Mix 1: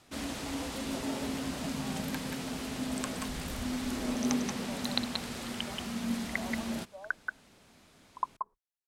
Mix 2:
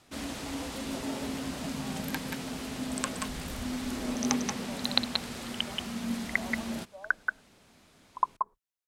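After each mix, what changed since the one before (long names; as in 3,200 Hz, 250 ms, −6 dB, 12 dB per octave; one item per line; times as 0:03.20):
second sound +6.0 dB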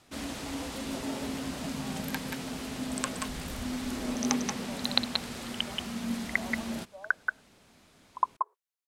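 second sound: add linear-phase brick-wall high-pass 350 Hz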